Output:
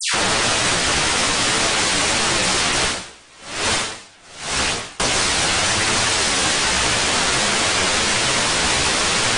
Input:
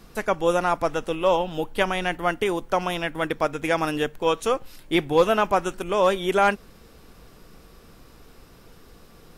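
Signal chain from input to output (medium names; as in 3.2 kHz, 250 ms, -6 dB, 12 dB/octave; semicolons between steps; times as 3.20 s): spectral levelling over time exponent 0.2; peaking EQ 420 Hz +8 dB 0.45 oct; peak limiter -2.5 dBFS, peak gain reduction 5.5 dB; level rider gain up to 11 dB; integer overflow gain 15 dB; phase dispersion lows, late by 141 ms, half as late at 2 kHz; chorus voices 2, 0.51 Hz, delay 13 ms, depth 4.1 ms; brick-wall FIR low-pass 10 kHz; 2.81–5.00 s: logarithmic tremolo 1.1 Hz, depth 29 dB; trim +5 dB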